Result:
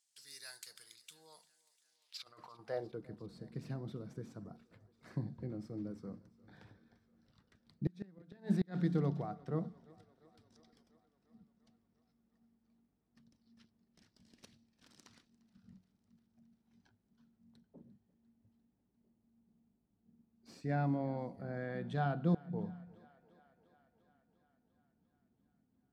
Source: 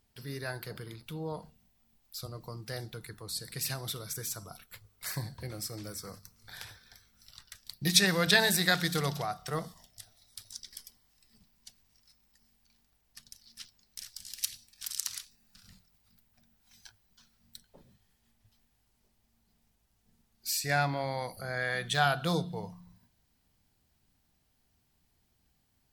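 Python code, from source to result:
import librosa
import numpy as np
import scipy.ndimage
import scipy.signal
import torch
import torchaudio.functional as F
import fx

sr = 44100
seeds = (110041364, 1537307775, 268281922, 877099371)

p1 = scipy.ndimage.median_filter(x, 3, mode='constant')
p2 = fx.over_compress(p1, sr, threshold_db=-47.0, ratio=-0.5, at=(2.17, 2.59))
p3 = fx.filter_sweep_bandpass(p2, sr, from_hz=7800.0, to_hz=240.0, start_s=1.77, end_s=3.1, q=2.1)
p4 = fx.gate_flip(p3, sr, shuts_db=-28.0, range_db=-31)
p5 = p4 + fx.echo_thinned(p4, sr, ms=348, feedback_pct=72, hz=260.0, wet_db=-22.5, dry=0)
y = p5 * librosa.db_to_amplitude(6.5)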